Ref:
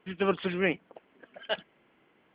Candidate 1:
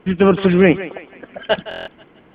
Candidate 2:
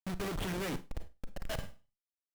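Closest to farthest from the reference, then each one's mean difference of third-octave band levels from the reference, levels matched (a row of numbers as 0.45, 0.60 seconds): 1, 2; 3.0, 14.5 decibels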